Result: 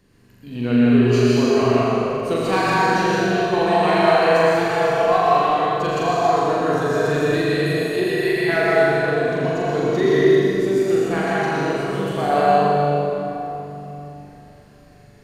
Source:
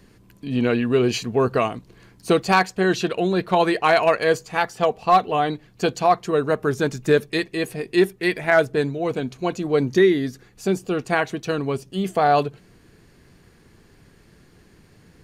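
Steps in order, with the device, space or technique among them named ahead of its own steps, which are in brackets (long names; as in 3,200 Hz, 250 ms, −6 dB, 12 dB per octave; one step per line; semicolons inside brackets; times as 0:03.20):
tunnel (flutter between parallel walls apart 7.1 metres, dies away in 0.86 s; convolution reverb RT60 3.4 s, pre-delay 100 ms, DRR −6.5 dB)
level −8 dB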